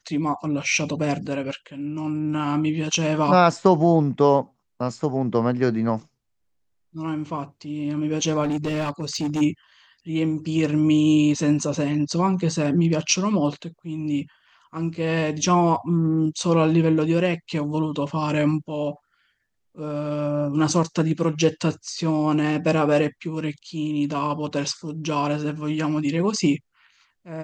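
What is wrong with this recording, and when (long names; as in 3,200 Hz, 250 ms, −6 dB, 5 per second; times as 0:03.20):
0:08.43–0:09.42: clipping −21 dBFS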